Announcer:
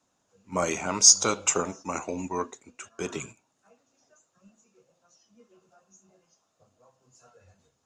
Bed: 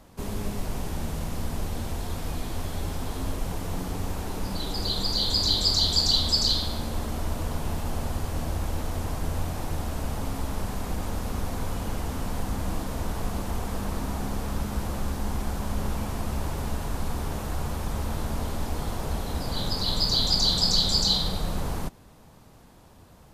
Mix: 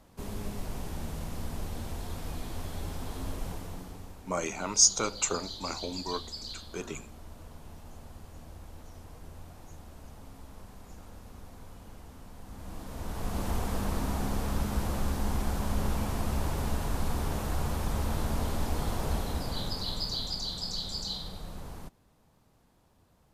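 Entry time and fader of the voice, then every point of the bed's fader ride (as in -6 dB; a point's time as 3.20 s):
3.75 s, -5.0 dB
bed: 3.48 s -6 dB
4.24 s -18 dB
12.38 s -18 dB
13.46 s -1 dB
19.15 s -1 dB
20.46 s -13 dB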